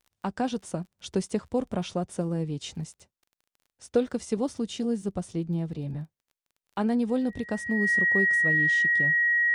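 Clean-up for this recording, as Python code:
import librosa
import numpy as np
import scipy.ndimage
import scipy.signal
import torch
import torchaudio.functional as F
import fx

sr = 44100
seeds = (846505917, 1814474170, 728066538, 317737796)

y = fx.fix_declick_ar(x, sr, threshold=6.5)
y = fx.notch(y, sr, hz=1900.0, q=30.0)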